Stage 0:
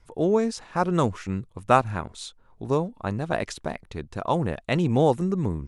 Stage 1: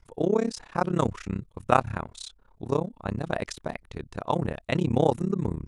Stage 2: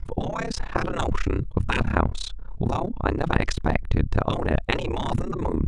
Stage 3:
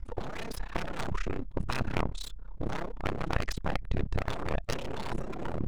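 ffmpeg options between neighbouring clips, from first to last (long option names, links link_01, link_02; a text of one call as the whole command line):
ffmpeg -i in.wav -af "tremolo=f=33:d=0.974,volume=1.5dB" out.wav
ffmpeg -i in.wav -af "acontrast=25,afftfilt=real='re*lt(hypot(re,im),0.224)':imag='im*lt(hypot(re,im),0.224)':win_size=1024:overlap=0.75,aemphasis=mode=reproduction:type=bsi,volume=6dB" out.wav
ffmpeg -i in.wav -af "aeval=exprs='abs(val(0))':channel_layout=same,volume=-7dB" out.wav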